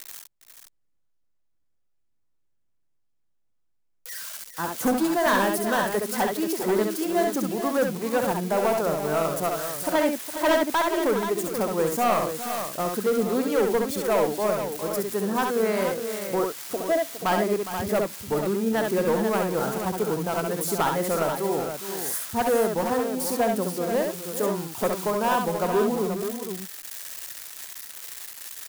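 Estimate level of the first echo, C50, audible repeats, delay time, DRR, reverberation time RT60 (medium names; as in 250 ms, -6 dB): -4.5 dB, no reverb, 3, 67 ms, no reverb, no reverb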